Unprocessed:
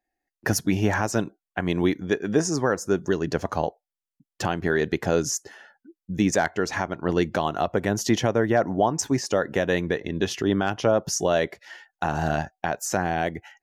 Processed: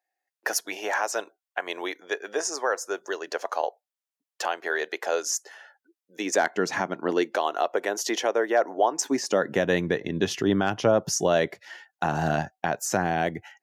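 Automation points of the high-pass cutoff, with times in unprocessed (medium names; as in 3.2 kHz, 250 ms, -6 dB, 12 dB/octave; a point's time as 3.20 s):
high-pass 24 dB/octave
6.11 s 490 Hz
6.74 s 130 Hz
7.35 s 380 Hz
8.88 s 380 Hz
9.67 s 100 Hz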